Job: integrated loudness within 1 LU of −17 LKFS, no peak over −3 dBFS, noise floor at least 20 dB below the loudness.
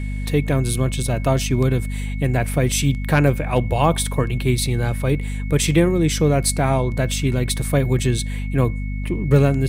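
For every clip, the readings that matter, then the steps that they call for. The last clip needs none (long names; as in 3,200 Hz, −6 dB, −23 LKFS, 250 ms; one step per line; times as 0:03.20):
mains hum 50 Hz; hum harmonics up to 250 Hz; level of the hum −22 dBFS; interfering tone 2,200 Hz; level of the tone −39 dBFS; integrated loudness −20.0 LKFS; sample peak −3.5 dBFS; target loudness −17.0 LKFS
→ mains-hum notches 50/100/150/200/250 Hz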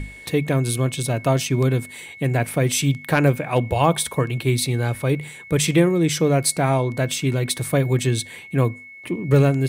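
mains hum none found; interfering tone 2,200 Hz; level of the tone −39 dBFS
→ notch filter 2,200 Hz, Q 30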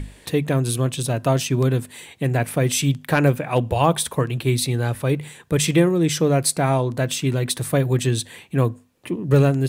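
interfering tone none found; integrated loudness −21.0 LKFS; sample peak −4.0 dBFS; target loudness −17.0 LKFS
→ level +4 dB
brickwall limiter −3 dBFS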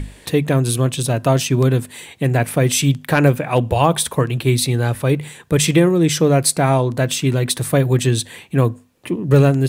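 integrated loudness −17.5 LKFS; sample peak −3.0 dBFS; background noise floor −46 dBFS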